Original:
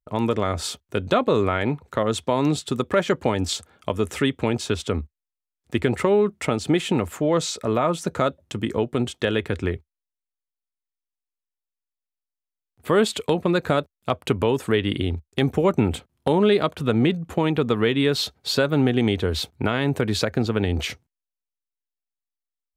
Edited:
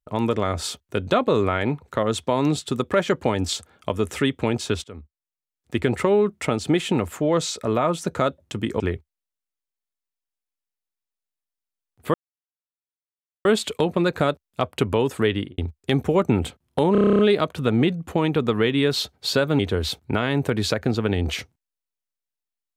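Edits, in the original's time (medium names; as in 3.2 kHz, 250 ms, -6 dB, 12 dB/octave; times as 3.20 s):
4.84–5.88 s: fade in, from -19.5 dB
8.80–9.60 s: delete
12.94 s: insert silence 1.31 s
14.81–15.07 s: studio fade out
16.41 s: stutter 0.03 s, 10 plays
18.81–19.10 s: delete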